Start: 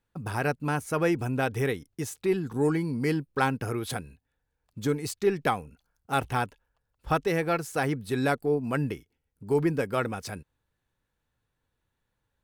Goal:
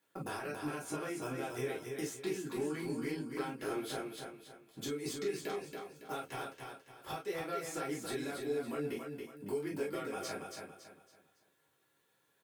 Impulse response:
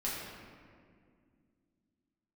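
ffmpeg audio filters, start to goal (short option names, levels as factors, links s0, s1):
-filter_complex "[0:a]asettb=1/sr,asplit=3[s0][s1][s2];[s0]atrim=end=3.594[s3];[s1]atrim=start=3.59:end=4.8,asetpts=PTS-STARTPTS,afade=t=in:d=0.004:c=qsin,afade=t=out:st=1.206:d=0.004:c=qsin,aeval=exprs='if(lt(val(0),0),0.447*val(0),val(0))':c=same[s4];[s2]atrim=start=4.796[s5];[s3][s4]acrossfade=d=0.004:c1=hsin:c2=qsin[s6];[s6][s5]acrossfade=d=0.004:c1=qsin:c2=hsin,highpass=240,highshelf=f=8900:g=8.5,acrossover=split=2400|7300[s7][s8][s9];[s7]acompressor=threshold=0.0251:ratio=4[s10];[s8]acompressor=threshold=0.00631:ratio=4[s11];[s9]acompressor=threshold=0.00224:ratio=4[s12];[s10][s11][s12]amix=inputs=3:normalize=0,alimiter=level_in=1.33:limit=0.0631:level=0:latency=1:release=323,volume=0.75,acompressor=threshold=0.00398:ratio=2,aecho=1:1:279|558|837|1116:0.562|0.197|0.0689|0.0241[s13];[1:a]atrim=start_sample=2205,atrim=end_sample=4410,asetrate=74970,aresample=44100[s14];[s13][s14]afir=irnorm=-1:irlink=0,volume=2.51"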